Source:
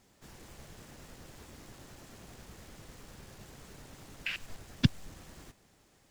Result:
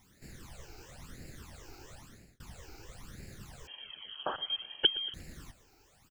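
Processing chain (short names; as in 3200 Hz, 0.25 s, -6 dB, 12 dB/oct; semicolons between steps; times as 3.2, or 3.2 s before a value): added noise white -74 dBFS; phaser stages 12, 1 Hz, lowest notch 180–1100 Hz; feedback echo 0.119 s, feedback 47%, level -19 dB; 1.94–2.4 fade out; 3.67–5.14 inverted band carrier 3200 Hz; gain +3.5 dB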